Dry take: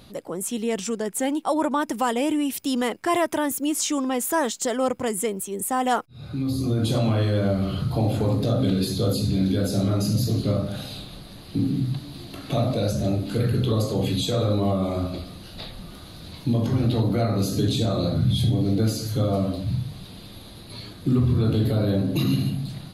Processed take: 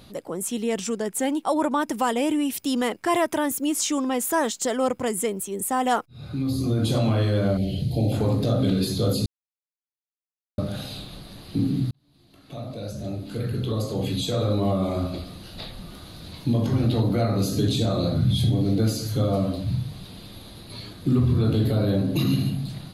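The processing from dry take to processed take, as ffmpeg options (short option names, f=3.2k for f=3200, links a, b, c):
-filter_complex "[0:a]asettb=1/sr,asplit=3[a][b][c];[a]atrim=end=7.574[d];[b]atrim=start=7.57:end=8.12,asetpts=PTS-STARTPTS,afade=t=in:d=0.004:c=qsin,afade=t=out:st=0.546:d=0.004:c=qsin,asuperstop=centerf=1200:order=4:qfactor=0.7[e];[c]atrim=start=8.116[f];[d][e]acrossfade=d=0.004:c1=hsin:c2=qsin[g];[g][f]acrossfade=d=0.004:c1=qsin:c2=hsin,asplit=4[h][i][j][k];[h]atrim=end=9.26,asetpts=PTS-STARTPTS,afade=t=out:st=9.256:d=0.004:c=hsin[l];[i]atrim=start=9.26:end=10.58,asetpts=PTS-STARTPTS,volume=0[m];[j]atrim=start=10.58:end=11.91,asetpts=PTS-STARTPTS,afade=t=in:d=0.004:c=hsin,afade=t=out:st=1.326:d=0.004:c=hsin[n];[k]atrim=start=11.91,asetpts=PTS-STARTPTS,afade=t=in:d=2.89[o];[l][m][n][o]concat=n=4:v=0:a=1"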